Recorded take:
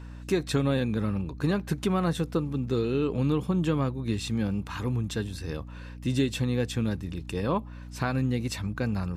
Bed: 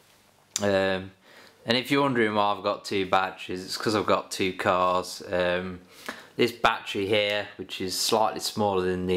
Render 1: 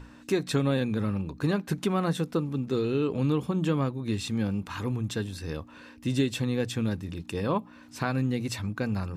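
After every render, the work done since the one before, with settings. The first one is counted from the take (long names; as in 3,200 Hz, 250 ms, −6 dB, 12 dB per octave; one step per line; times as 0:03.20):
mains-hum notches 60/120/180 Hz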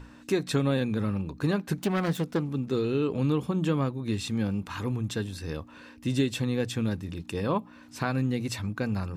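0:01.78–0:02.49: phase distortion by the signal itself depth 0.23 ms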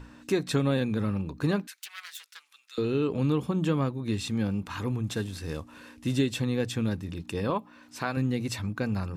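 0:01.67–0:02.78: Bessel high-pass filter 2,500 Hz, order 4
0:05.07–0:06.16: variable-slope delta modulation 64 kbit/s
0:07.50–0:08.17: low-shelf EQ 200 Hz −10.5 dB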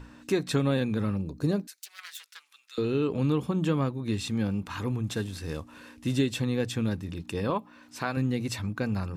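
0:01.16–0:01.99: flat-topped bell 1,700 Hz −9 dB 2.3 octaves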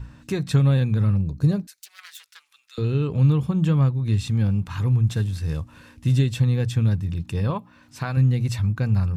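low shelf with overshoot 190 Hz +10.5 dB, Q 1.5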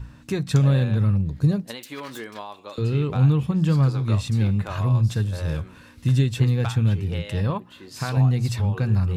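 mix in bed −13 dB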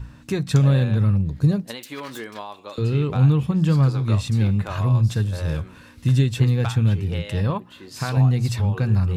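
level +1.5 dB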